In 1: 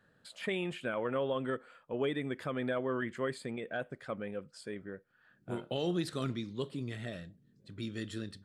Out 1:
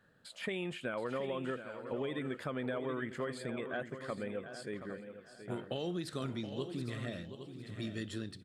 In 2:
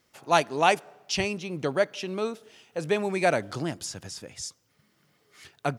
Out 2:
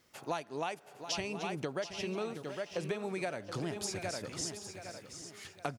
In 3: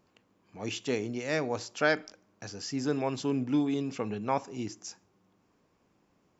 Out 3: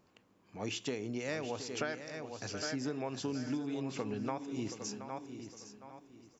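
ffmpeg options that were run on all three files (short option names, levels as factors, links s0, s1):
-filter_complex "[0:a]asplit=2[s0][s1];[s1]aecho=0:1:807|1614|2421:0.211|0.0528|0.0132[s2];[s0][s2]amix=inputs=2:normalize=0,acompressor=threshold=0.0224:ratio=16,asplit=2[s3][s4];[s4]aecho=0:1:725:0.282[s5];[s3][s5]amix=inputs=2:normalize=0"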